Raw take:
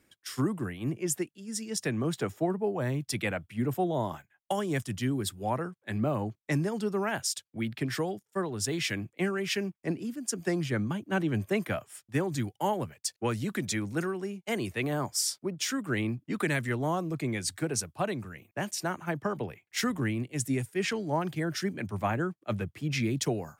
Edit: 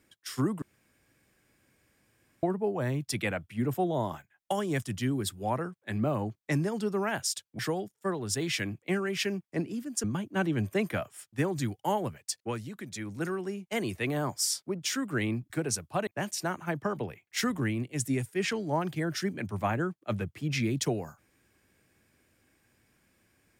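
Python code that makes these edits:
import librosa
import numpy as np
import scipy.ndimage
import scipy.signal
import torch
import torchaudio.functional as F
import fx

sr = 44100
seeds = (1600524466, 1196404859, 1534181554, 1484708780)

y = fx.edit(x, sr, fx.room_tone_fill(start_s=0.62, length_s=1.81),
    fx.cut(start_s=7.59, length_s=0.31),
    fx.cut(start_s=10.35, length_s=0.45),
    fx.fade_down_up(start_s=13.0, length_s=1.15, db=-9.5, fade_s=0.48),
    fx.cut(start_s=16.26, length_s=1.29),
    fx.cut(start_s=18.12, length_s=0.35), tone=tone)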